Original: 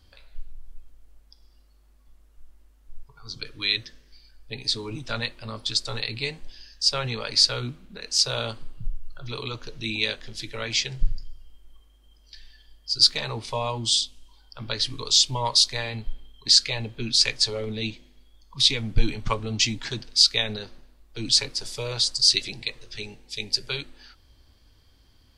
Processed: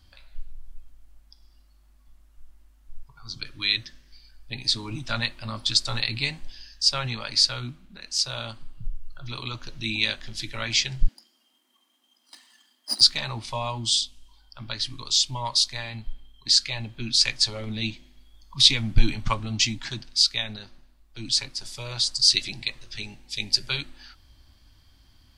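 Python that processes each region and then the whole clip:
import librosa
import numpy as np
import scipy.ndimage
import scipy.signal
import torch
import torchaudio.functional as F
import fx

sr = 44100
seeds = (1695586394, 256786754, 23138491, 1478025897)

y = fx.chain(x, sr, fx.lower_of_two(delay_ms=1.0),
    fx.steep_highpass(hz=210.0, slope=96),
    fx.clip_hard(threshold_db=-18.5), at=(11.08, 13.01))
y = fx.peak_eq(y, sr, hz=450.0, db=-14.0, octaves=0.39)
y = fx.rider(y, sr, range_db=5, speed_s=2.0)
y = y * librosa.db_to_amplitude(-1.0)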